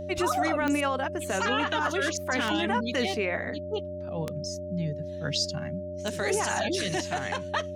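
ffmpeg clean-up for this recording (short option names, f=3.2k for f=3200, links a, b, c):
-af "adeclick=t=4,bandreject=f=91.2:t=h:w=4,bandreject=f=182.4:t=h:w=4,bandreject=f=273.6:t=h:w=4,bandreject=f=364.8:t=h:w=4,bandreject=f=600:w=30"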